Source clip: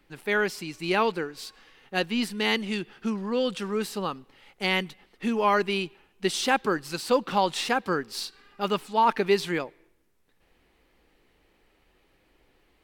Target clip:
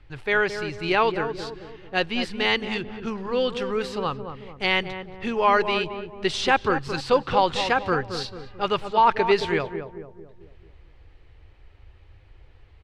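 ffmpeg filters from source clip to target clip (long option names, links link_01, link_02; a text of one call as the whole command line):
ffmpeg -i in.wav -filter_complex "[0:a]lowpass=4500,lowshelf=frequency=140:width_type=q:width=3:gain=12.5,asplit=2[link_01][link_02];[link_02]adelay=221,lowpass=frequency=870:poles=1,volume=-7dB,asplit=2[link_03][link_04];[link_04]adelay=221,lowpass=frequency=870:poles=1,volume=0.52,asplit=2[link_05][link_06];[link_06]adelay=221,lowpass=frequency=870:poles=1,volume=0.52,asplit=2[link_07][link_08];[link_08]adelay=221,lowpass=frequency=870:poles=1,volume=0.52,asplit=2[link_09][link_10];[link_10]adelay=221,lowpass=frequency=870:poles=1,volume=0.52,asplit=2[link_11][link_12];[link_12]adelay=221,lowpass=frequency=870:poles=1,volume=0.52[link_13];[link_01][link_03][link_05][link_07][link_09][link_11][link_13]amix=inputs=7:normalize=0,volume=4dB" out.wav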